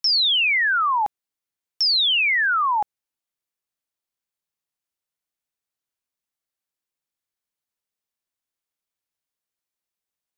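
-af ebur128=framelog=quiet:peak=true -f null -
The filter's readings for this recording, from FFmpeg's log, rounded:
Integrated loudness:
  I:         -18.0 LUFS
  Threshold: -28.3 LUFS
Loudness range:
  LRA:        12.5 LU
  Threshold: -42.0 LUFS
  LRA low:   -31.4 LUFS
  LRA high:  -18.9 LUFS
True peak:
  Peak:      -15.3 dBFS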